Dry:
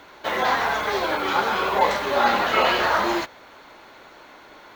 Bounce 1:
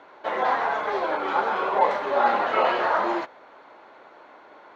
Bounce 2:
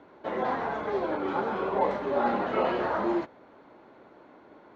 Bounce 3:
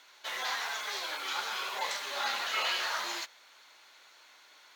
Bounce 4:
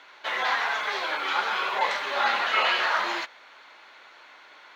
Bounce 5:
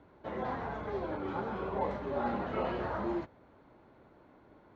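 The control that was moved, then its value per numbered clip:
band-pass filter, frequency: 690 Hz, 250 Hz, 7.7 kHz, 2.5 kHz, 100 Hz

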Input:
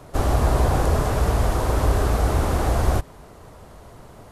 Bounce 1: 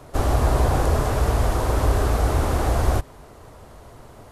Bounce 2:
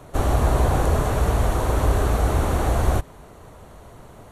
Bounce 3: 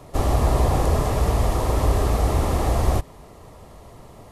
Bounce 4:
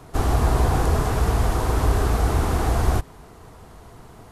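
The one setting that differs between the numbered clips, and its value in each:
band-stop, frequency: 180 Hz, 5 kHz, 1.5 kHz, 570 Hz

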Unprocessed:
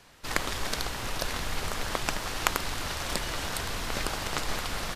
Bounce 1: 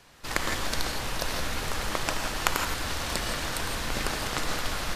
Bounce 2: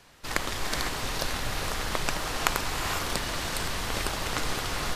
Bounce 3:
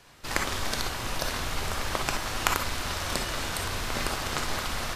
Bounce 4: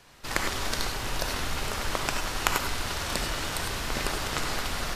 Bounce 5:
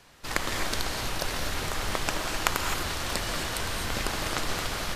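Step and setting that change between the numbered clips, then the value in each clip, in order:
gated-style reverb, gate: 190 ms, 530 ms, 80 ms, 120 ms, 280 ms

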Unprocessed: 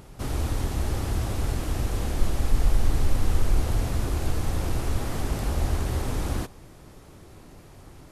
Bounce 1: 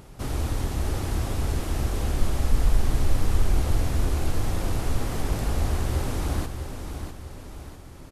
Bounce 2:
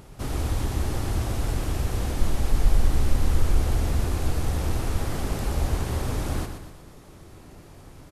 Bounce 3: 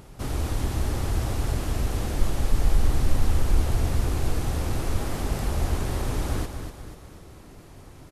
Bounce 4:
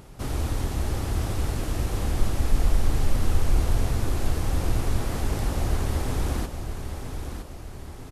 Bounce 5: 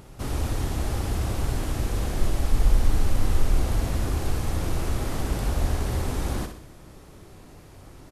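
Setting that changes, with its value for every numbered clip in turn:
feedback delay, time: 649 ms, 122 ms, 244 ms, 964 ms, 63 ms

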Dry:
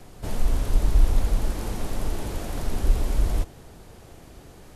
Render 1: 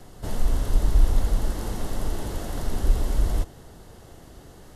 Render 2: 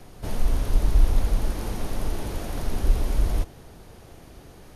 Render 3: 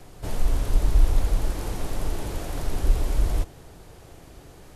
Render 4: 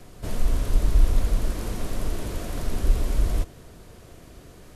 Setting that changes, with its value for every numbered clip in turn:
band-stop, frequency: 2.4 kHz, 7.6 kHz, 220 Hz, 830 Hz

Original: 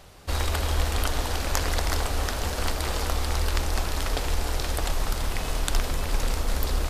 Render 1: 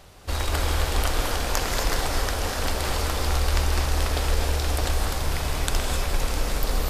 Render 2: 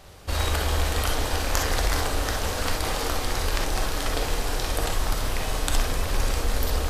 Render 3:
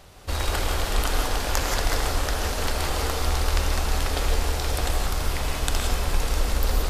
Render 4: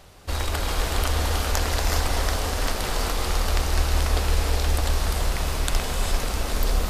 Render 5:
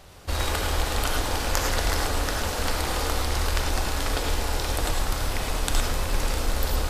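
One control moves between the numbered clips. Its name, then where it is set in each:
gated-style reverb, gate: 290 ms, 80 ms, 200 ms, 440 ms, 130 ms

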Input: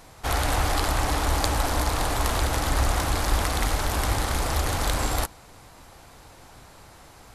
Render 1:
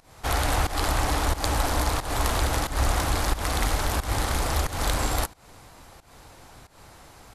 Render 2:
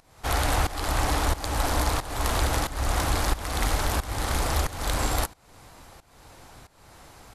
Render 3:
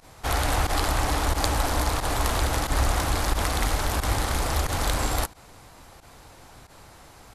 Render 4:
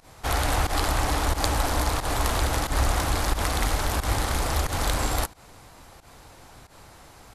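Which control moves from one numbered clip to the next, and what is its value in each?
volume shaper, release: 212 ms, 439 ms, 65 ms, 104 ms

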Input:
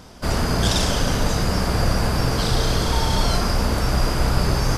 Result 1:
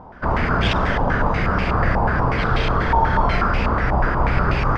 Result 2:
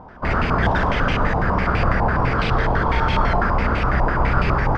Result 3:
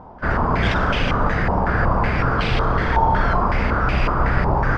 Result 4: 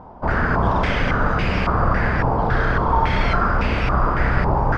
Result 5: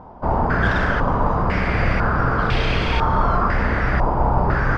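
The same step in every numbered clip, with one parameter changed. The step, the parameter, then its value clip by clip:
step-sequenced low-pass, rate: 8.2 Hz, 12 Hz, 5.4 Hz, 3.6 Hz, 2 Hz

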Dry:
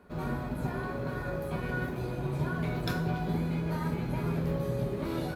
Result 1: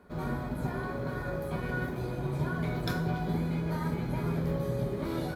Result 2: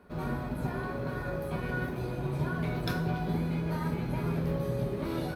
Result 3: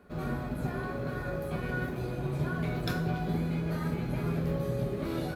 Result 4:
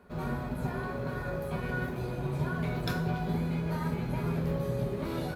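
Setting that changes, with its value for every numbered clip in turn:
band-stop, frequency: 2.7 kHz, 7.1 kHz, 940 Hz, 310 Hz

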